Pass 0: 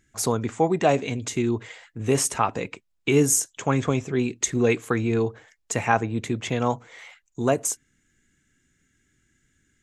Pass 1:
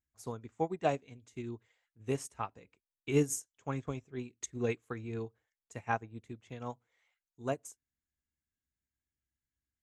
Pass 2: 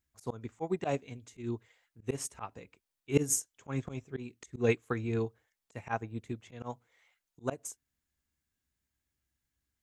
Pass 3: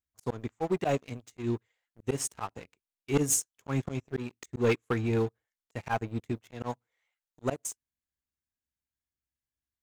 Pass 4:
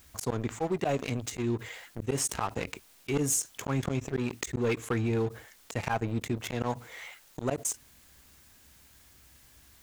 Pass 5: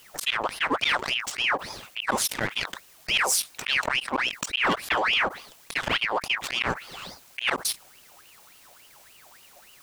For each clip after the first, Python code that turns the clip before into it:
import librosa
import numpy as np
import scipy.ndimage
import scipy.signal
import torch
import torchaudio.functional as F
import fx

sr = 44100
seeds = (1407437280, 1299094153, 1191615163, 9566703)

y1 = fx.peak_eq(x, sr, hz=63.0, db=14.0, octaves=0.88)
y1 = fx.upward_expand(y1, sr, threshold_db=-30.0, expansion=2.5)
y1 = y1 * 10.0 ** (-8.0 / 20.0)
y2 = fx.auto_swell(y1, sr, attack_ms=130.0)
y2 = y2 * 10.0 ** (7.0 / 20.0)
y3 = fx.leveller(y2, sr, passes=3)
y3 = y3 * 10.0 ** (-5.5 / 20.0)
y4 = fx.env_flatten(y3, sr, amount_pct=70)
y4 = y4 * 10.0 ** (-4.5 / 20.0)
y5 = 10.0 ** (-19.0 / 20.0) * np.tanh(y4 / 10.0 ** (-19.0 / 20.0))
y5 = fx.ring_lfo(y5, sr, carrier_hz=1800.0, swing_pct=65, hz=3.5)
y5 = y5 * 10.0 ** (8.0 / 20.0)